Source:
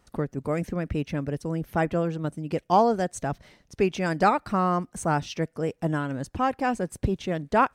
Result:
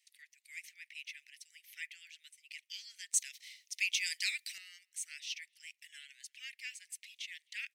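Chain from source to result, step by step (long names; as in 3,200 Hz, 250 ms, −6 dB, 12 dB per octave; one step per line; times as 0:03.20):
Butterworth high-pass 2,000 Hz 72 dB per octave
high-shelf EQ 2,700 Hz −3.5 dB, from 0:03.14 +9 dB, from 0:04.58 −3.5 dB
far-end echo of a speakerphone 260 ms, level −30 dB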